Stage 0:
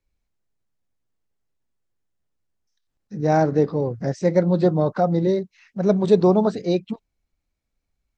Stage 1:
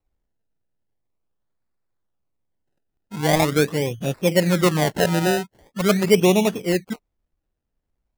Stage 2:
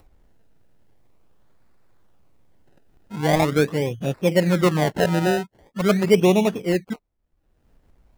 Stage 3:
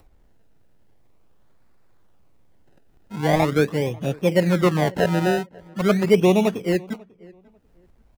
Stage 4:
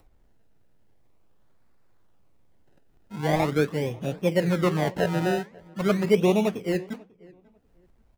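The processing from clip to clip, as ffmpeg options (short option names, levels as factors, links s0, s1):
-filter_complex "[0:a]acrossover=split=4100[s0][s1];[s1]acompressor=threshold=0.00112:ratio=4:attack=1:release=60[s2];[s0][s2]amix=inputs=2:normalize=0,acrusher=samples=27:mix=1:aa=0.000001:lfo=1:lforange=27:lforate=0.43"
-af "highshelf=f=3600:g=-7.5,acompressor=mode=upward:threshold=0.0126:ratio=2.5"
-filter_complex "[0:a]acrossover=split=620|2300[s0][s1][s2];[s2]asoftclip=type=tanh:threshold=0.0501[s3];[s0][s1][s3]amix=inputs=3:normalize=0,asplit=2[s4][s5];[s5]adelay=543,lowpass=f=1900:p=1,volume=0.0631,asplit=2[s6][s7];[s7]adelay=543,lowpass=f=1900:p=1,volume=0.23[s8];[s4][s6][s8]amix=inputs=3:normalize=0"
-af "flanger=delay=6.1:depth=9:regen=-78:speed=1.4:shape=sinusoidal"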